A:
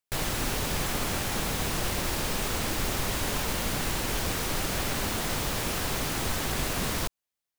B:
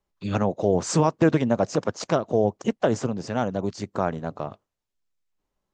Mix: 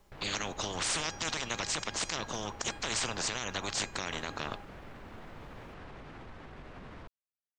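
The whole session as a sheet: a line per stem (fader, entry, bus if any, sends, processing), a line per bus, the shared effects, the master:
−13.5 dB, 0.00 s, no send, low-pass filter 2,000 Hz 12 dB per octave; brickwall limiter −25.5 dBFS, peak gain reduction 7.5 dB
+2.0 dB, 0.00 s, no send, tuned comb filter 820 Hz, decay 0.32 s, mix 60%; every bin compressed towards the loudest bin 10 to 1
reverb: not used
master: brickwall limiter −20.5 dBFS, peak gain reduction 7 dB

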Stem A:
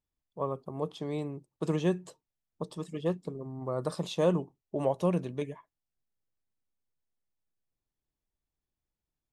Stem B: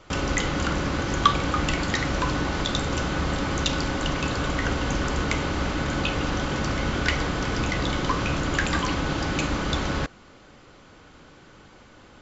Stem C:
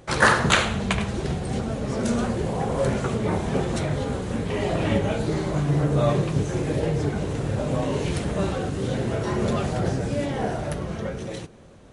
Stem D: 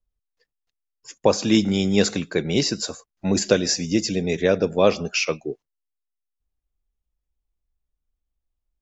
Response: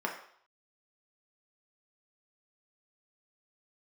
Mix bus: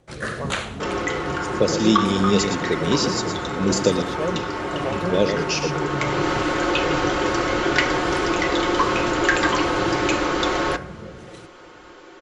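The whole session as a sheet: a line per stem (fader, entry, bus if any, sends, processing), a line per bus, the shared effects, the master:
−0.5 dB, 0.00 s, no send, no echo send, no processing
+1.5 dB, 0.70 s, send −10.5 dB, no echo send, low shelf with overshoot 260 Hz −7.5 dB, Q 3; comb filter 5.6 ms, depth 55%; automatic ducking −16 dB, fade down 1.50 s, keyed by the first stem
−6.5 dB, 0.00 s, no send, no echo send, rotating-speaker cabinet horn 1.2 Hz
0.0 dB, 0.35 s, muted 0:04.02–0:05.09, no send, echo send −8 dB, Chebyshev band-stop filter 470–3,200 Hz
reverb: on, RT60 0.60 s, pre-delay 3 ms
echo: single-tap delay 115 ms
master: no processing

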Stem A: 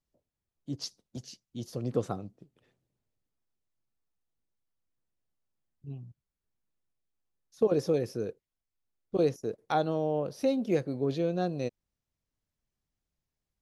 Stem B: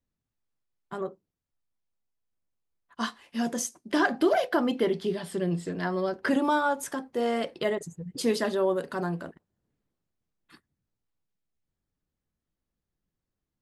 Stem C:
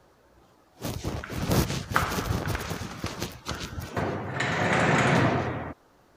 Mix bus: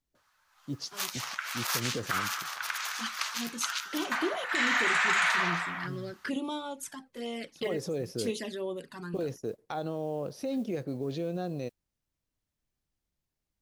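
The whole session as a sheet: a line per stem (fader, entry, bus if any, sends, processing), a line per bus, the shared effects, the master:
0.0 dB, 0.00 s, no send, brickwall limiter −25 dBFS, peak gain reduction 10.5 dB; noise that follows the level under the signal 33 dB
−7.5 dB, 0.00 s, no send, flanger swept by the level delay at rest 3.3 ms, full sweep at −22 dBFS; drawn EQ curve 330 Hz 0 dB, 750 Hz −4 dB, 2,500 Hz +7 dB
−5.0 dB, 0.15 s, no send, high-pass filter 1,100 Hz 24 dB per octave; automatic gain control gain up to 11.5 dB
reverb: not used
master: brickwall limiter −16.5 dBFS, peak gain reduction 10 dB

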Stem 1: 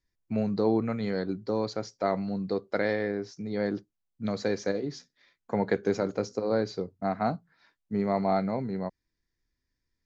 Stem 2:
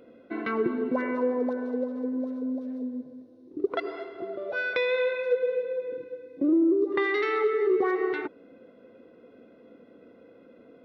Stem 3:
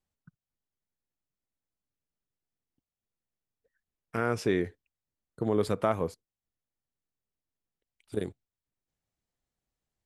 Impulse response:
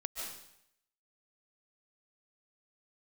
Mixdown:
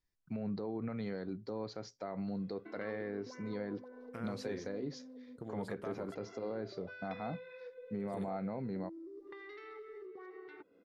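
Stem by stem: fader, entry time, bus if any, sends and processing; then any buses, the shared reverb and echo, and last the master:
−6.0 dB, 0.00 s, no send, treble cut that deepens with the level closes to 2,700 Hz, closed at −23.5 dBFS; brickwall limiter −25 dBFS, peak gain reduction 11.5 dB
−11.5 dB, 2.35 s, no send, thirty-one-band graphic EQ 250 Hz −5 dB, 630 Hz −5 dB, 5,000 Hz +5 dB; downward compressor 6 to 1, threshold −37 dBFS, peak gain reduction 15.5 dB
−10.5 dB, 0.00 s, no send, downward compressor 3 to 1, threshold −33 dBFS, peak gain reduction 9.5 dB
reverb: not used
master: no processing

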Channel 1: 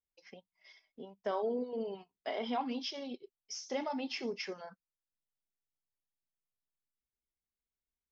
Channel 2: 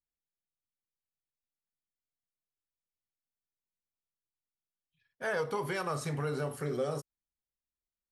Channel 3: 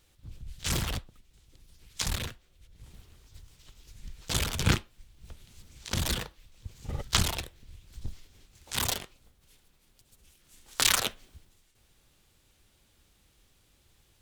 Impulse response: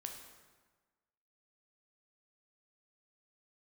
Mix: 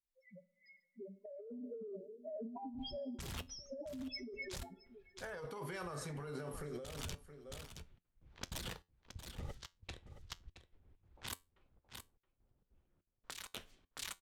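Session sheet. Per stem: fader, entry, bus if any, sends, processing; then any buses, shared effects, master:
+2.5 dB, 0.00 s, send −9 dB, echo send −20.5 dB, comb filter 5 ms, depth 63%; spectral peaks only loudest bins 1
−6.0 dB, 0.00 s, no send, echo send −16.5 dB, no processing
−10.0 dB, 2.50 s, no send, echo send −12 dB, gate pattern "x.xxxx...xx" 197 BPM −60 dB; low-pass that shuts in the quiet parts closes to 820 Hz, open at −30.5 dBFS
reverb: on, RT60 1.4 s, pre-delay 8 ms
echo: single-tap delay 671 ms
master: compressor whose output falls as the input rises −42 dBFS, ratio −1; tuned comb filter 88 Hz, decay 0.23 s, harmonics all, mix 40%

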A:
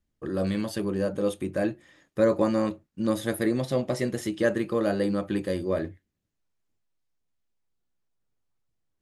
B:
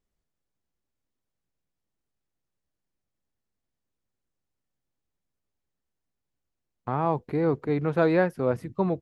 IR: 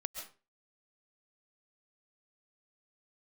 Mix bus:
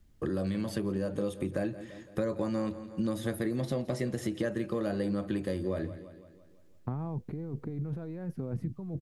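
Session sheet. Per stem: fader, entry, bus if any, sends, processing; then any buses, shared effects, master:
−1.5 dB, 0.00 s, no send, echo send −18.5 dB, multiband upward and downward compressor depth 40%
−17.0 dB, 0.00 s, no send, no echo send, parametric band 180 Hz +13.5 dB 2.4 octaves; compressor whose output falls as the input rises −22 dBFS, ratio −1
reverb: not used
echo: repeating echo 169 ms, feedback 53%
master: low-shelf EQ 160 Hz +9 dB; downward compressor 4 to 1, threshold −29 dBFS, peak gain reduction 10 dB

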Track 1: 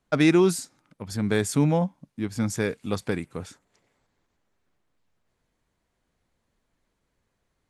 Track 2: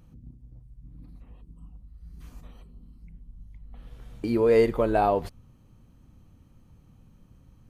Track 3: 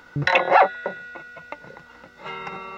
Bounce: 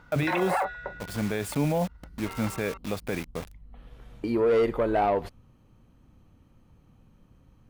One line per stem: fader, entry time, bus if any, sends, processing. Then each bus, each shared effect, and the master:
−3.0 dB, 0.00 s, no send, graphic EQ with 15 bands 630 Hz +8 dB, 2,500 Hz +7 dB, 6,300 Hz −10 dB; bit reduction 6 bits
+1.5 dB, 0.00 s, no send, bass and treble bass −5 dB, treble −6 dB; soft clipping −18 dBFS, distortion −15 dB
+2.5 dB, 0.00 s, no send, noise gate −44 dBFS, range −14 dB; parametric band 1,100 Hz +5 dB 1.5 octaves; automatic ducking −14 dB, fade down 0.90 s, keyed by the second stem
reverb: not used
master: brickwall limiter −17.5 dBFS, peak gain reduction 14 dB

